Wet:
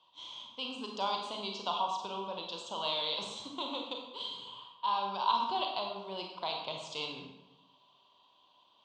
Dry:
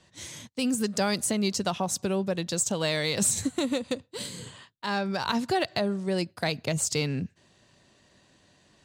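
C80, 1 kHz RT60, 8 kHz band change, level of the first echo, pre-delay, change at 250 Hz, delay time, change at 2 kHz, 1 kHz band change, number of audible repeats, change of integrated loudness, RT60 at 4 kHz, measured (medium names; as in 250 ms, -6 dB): 6.0 dB, 0.85 s, -25.0 dB, no echo, 29 ms, -18.0 dB, no echo, -12.0 dB, +1.0 dB, no echo, -7.5 dB, 0.75 s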